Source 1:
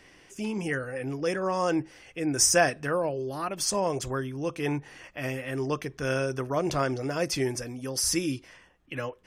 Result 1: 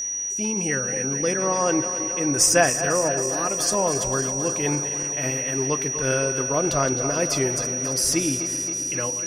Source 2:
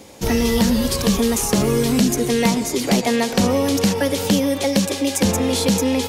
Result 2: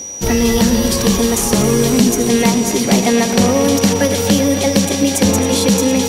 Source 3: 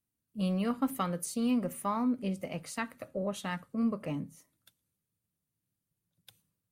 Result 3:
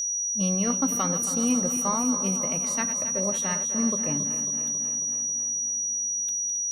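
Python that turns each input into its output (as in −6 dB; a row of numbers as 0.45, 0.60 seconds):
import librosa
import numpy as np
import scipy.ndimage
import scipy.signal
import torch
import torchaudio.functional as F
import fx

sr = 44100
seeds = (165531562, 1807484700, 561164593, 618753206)

y = fx.reverse_delay_fb(x, sr, ms=136, feedback_pct=83, wet_db=-11.5)
y = y + 10.0 ** (-29.0 / 20.0) * np.sin(2.0 * np.pi * 5800.0 * np.arange(len(y)) / sr)
y = F.gain(torch.from_numpy(y), 3.5).numpy()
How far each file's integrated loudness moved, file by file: +6.5, +5.0, +9.5 LU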